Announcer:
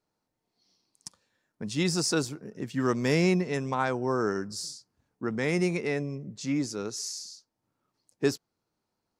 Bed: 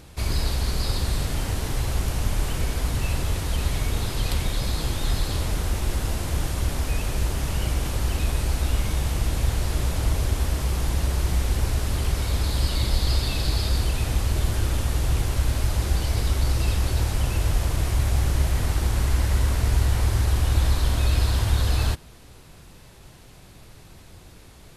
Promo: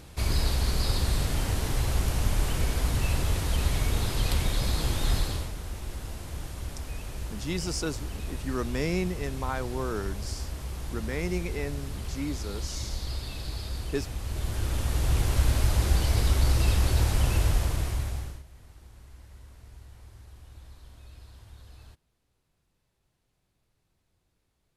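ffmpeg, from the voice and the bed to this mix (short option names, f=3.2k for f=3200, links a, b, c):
-filter_complex "[0:a]adelay=5700,volume=-5dB[a];[1:a]volume=9.5dB,afade=t=out:st=5.16:d=0.36:silence=0.316228,afade=t=in:st=14.19:d=1.21:silence=0.281838,afade=t=out:st=17.37:d=1.06:silence=0.0421697[b];[a][b]amix=inputs=2:normalize=0"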